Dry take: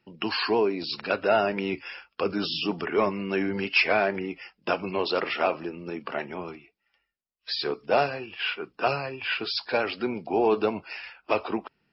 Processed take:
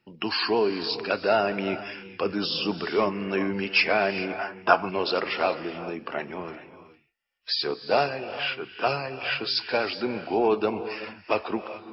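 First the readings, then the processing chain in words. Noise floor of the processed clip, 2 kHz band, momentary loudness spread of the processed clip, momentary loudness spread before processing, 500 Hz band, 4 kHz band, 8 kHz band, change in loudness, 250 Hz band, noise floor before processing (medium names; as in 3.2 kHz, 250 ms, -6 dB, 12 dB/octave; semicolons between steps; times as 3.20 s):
-56 dBFS, +1.0 dB, 11 LU, 12 LU, +0.5 dB, +2.0 dB, no reading, +1.0 dB, +0.5 dB, -78 dBFS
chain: dynamic bell 4.8 kHz, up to +5 dB, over -49 dBFS, Q 4.9; gated-style reverb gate 450 ms rising, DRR 11.5 dB; time-frequency box 4.39–4.89 s, 630–1700 Hz +10 dB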